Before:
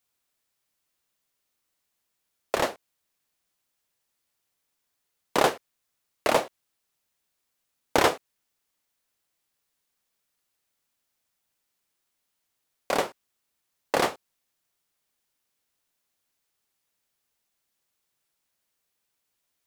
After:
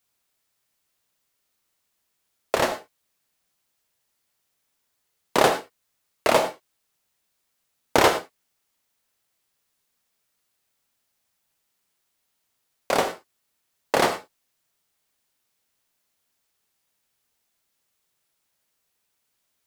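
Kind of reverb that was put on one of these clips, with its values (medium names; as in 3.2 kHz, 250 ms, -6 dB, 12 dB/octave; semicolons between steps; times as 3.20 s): gated-style reverb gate 130 ms flat, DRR 7 dB; trim +3 dB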